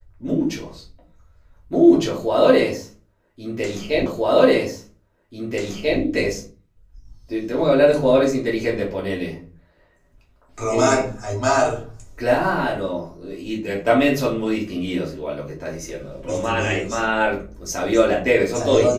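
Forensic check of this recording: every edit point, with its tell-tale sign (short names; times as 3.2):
4.06 repeat of the last 1.94 s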